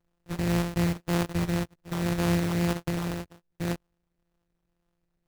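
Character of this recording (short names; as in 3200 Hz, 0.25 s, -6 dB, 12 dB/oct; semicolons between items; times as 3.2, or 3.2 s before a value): a buzz of ramps at a fixed pitch in blocks of 256 samples; phasing stages 12, 1.9 Hz, lowest notch 790–4500 Hz; aliases and images of a low sample rate 2200 Hz, jitter 20%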